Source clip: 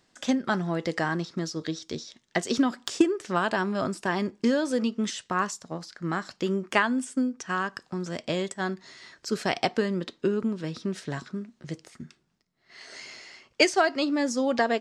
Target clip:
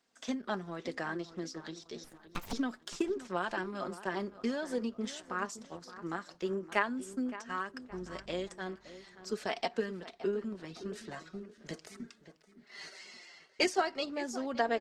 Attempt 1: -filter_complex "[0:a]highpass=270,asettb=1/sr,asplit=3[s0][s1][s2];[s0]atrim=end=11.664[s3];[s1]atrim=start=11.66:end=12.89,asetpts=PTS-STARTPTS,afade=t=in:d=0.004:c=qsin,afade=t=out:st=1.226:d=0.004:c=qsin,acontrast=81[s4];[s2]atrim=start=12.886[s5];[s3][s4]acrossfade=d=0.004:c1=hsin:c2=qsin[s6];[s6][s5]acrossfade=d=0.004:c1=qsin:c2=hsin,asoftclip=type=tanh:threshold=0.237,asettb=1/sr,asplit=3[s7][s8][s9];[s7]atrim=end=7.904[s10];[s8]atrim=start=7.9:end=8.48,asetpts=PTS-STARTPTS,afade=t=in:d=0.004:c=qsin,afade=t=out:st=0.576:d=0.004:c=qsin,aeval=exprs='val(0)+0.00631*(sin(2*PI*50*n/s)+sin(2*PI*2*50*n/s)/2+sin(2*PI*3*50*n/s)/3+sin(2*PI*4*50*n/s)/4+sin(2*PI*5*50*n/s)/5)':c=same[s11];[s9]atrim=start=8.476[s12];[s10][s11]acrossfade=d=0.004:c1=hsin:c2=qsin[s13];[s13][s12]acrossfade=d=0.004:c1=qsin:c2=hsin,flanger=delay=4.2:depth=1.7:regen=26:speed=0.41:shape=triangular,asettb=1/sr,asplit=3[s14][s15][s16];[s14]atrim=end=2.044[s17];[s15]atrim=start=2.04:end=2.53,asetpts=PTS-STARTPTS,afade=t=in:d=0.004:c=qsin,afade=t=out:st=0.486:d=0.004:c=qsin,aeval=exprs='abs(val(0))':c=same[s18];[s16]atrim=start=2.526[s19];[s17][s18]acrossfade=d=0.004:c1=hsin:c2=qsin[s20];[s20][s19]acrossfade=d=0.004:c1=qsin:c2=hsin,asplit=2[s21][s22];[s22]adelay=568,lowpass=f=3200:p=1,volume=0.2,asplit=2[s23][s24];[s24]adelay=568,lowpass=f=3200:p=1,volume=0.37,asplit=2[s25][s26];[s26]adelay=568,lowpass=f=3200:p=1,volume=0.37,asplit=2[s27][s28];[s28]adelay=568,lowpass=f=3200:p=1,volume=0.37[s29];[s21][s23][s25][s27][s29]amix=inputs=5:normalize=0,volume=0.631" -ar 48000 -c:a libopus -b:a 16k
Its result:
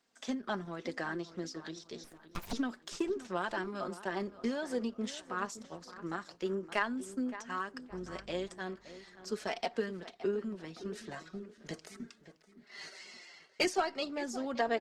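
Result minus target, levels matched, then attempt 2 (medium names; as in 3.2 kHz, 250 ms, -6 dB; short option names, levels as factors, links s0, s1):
saturation: distortion +18 dB
-filter_complex "[0:a]highpass=270,asettb=1/sr,asplit=3[s0][s1][s2];[s0]atrim=end=11.664[s3];[s1]atrim=start=11.66:end=12.89,asetpts=PTS-STARTPTS,afade=t=in:d=0.004:c=qsin,afade=t=out:st=1.226:d=0.004:c=qsin,acontrast=81[s4];[s2]atrim=start=12.886[s5];[s3][s4]acrossfade=d=0.004:c1=hsin:c2=qsin[s6];[s6][s5]acrossfade=d=0.004:c1=qsin:c2=hsin,asoftclip=type=tanh:threshold=0.841,asettb=1/sr,asplit=3[s7][s8][s9];[s7]atrim=end=7.904[s10];[s8]atrim=start=7.9:end=8.48,asetpts=PTS-STARTPTS,afade=t=in:d=0.004:c=qsin,afade=t=out:st=0.576:d=0.004:c=qsin,aeval=exprs='val(0)+0.00631*(sin(2*PI*50*n/s)+sin(2*PI*2*50*n/s)/2+sin(2*PI*3*50*n/s)/3+sin(2*PI*4*50*n/s)/4+sin(2*PI*5*50*n/s)/5)':c=same[s11];[s9]atrim=start=8.476[s12];[s10][s11]acrossfade=d=0.004:c1=hsin:c2=qsin[s13];[s13][s12]acrossfade=d=0.004:c1=qsin:c2=hsin,flanger=delay=4.2:depth=1.7:regen=26:speed=0.41:shape=triangular,asettb=1/sr,asplit=3[s14][s15][s16];[s14]atrim=end=2.044[s17];[s15]atrim=start=2.04:end=2.53,asetpts=PTS-STARTPTS,afade=t=in:d=0.004:c=qsin,afade=t=out:st=0.486:d=0.004:c=qsin,aeval=exprs='abs(val(0))':c=same[s18];[s16]atrim=start=2.526[s19];[s17][s18]acrossfade=d=0.004:c1=hsin:c2=qsin[s20];[s20][s19]acrossfade=d=0.004:c1=qsin:c2=hsin,asplit=2[s21][s22];[s22]adelay=568,lowpass=f=3200:p=1,volume=0.2,asplit=2[s23][s24];[s24]adelay=568,lowpass=f=3200:p=1,volume=0.37,asplit=2[s25][s26];[s26]adelay=568,lowpass=f=3200:p=1,volume=0.37,asplit=2[s27][s28];[s28]adelay=568,lowpass=f=3200:p=1,volume=0.37[s29];[s21][s23][s25][s27][s29]amix=inputs=5:normalize=0,volume=0.631" -ar 48000 -c:a libopus -b:a 16k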